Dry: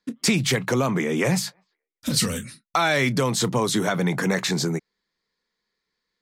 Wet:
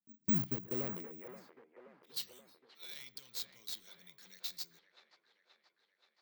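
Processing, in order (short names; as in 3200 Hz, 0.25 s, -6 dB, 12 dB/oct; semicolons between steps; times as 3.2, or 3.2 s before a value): passive tone stack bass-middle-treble 10-0-1; auto swell 0.107 s; band-pass sweep 210 Hz -> 4200 Hz, 0.28–2.34; careless resampling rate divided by 2×, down filtered, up zero stuff; in parallel at -3.5 dB: bit-crush 7-bit; on the sum: band-limited delay 0.527 s, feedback 62%, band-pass 1000 Hz, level -6 dB; on a send at -21.5 dB: reverb RT60 0.45 s, pre-delay 77 ms; 0.59–1.37 on the sum: sustainer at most 48 dB/s; gain +3.5 dB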